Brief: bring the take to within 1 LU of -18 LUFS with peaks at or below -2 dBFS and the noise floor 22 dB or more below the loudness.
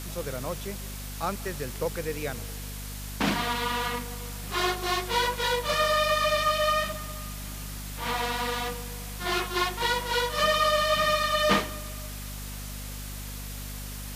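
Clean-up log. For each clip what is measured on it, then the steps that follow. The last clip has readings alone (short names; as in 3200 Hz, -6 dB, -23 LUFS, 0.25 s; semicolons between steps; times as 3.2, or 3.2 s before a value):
hum 50 Hz; harmonics up to 250 Hz; hum level -36 dBFS; noise floor -37 dBFS; noise floor target -50 dBFS; loudness -28.0 LUFS; peak -10.0 dBFS; loudness target -18.0 LUFS
-> notches 50/100/150/200/250 Hz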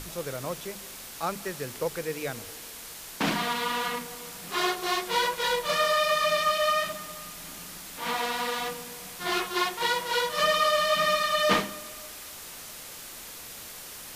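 hum none; noise floor -43 dBFS; noise floor target -49 dBFS
-> noise print and reduce 6 dB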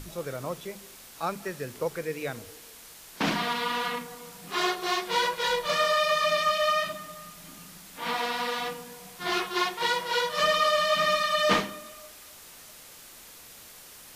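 noise floor -49 dBFS; loudness -27.0 LUFS; peak -10.0 dBFS; loudness target -18.0 LUFS
-> gain +9 dB; limiter -2 dBFS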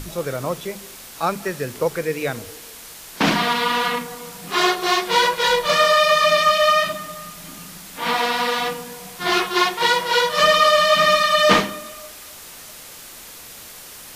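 loudness -18.0 LUFS; peak -2.0 dBFS; noise floor -40 dBFS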